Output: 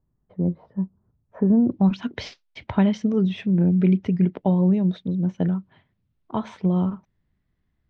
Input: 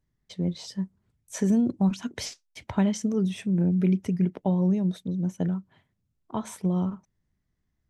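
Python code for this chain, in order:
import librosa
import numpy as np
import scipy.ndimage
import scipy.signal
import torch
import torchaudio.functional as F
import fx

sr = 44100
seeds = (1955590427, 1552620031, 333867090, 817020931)

y = fx.lowpass(x, sr, hz=fx.steps((0.0, 1200.0), (1.72, 4000.0)), slope=24)
y = F.gain(torch.from_numpy(y), 4.5).numpy()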